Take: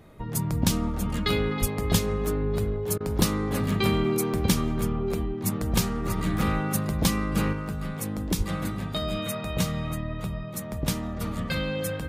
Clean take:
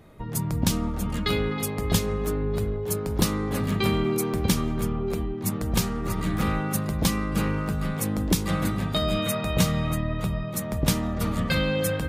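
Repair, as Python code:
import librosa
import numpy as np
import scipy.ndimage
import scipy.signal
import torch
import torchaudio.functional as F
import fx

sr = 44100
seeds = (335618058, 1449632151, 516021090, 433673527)

y = fx.fix_deplosive(x, sr, at_s=(1.6, 8.37))
y = fx.fix_interpolate(y, sr, at_s=(2.98,), length_ms=23.0)
y = fx.fix_level(y, sr, at_s=7.53, step_db=4.5)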